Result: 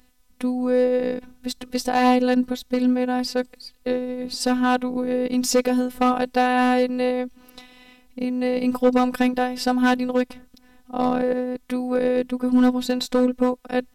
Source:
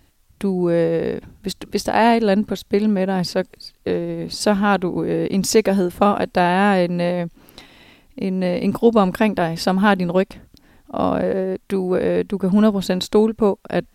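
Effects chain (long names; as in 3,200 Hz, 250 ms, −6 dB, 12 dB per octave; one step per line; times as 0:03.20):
gain into a clipping stage and back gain 10 dB
phases set to zero 250 Hz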